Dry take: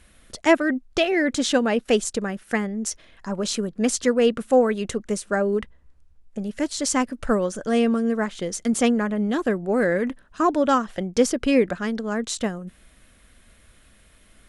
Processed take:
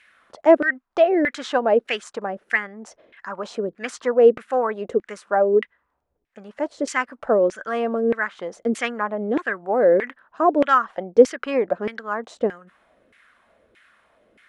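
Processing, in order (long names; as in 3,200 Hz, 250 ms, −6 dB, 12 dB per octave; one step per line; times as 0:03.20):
auto-filter band-pass saw down 1.6 Hz 390–2,200 Hz
level +9 dB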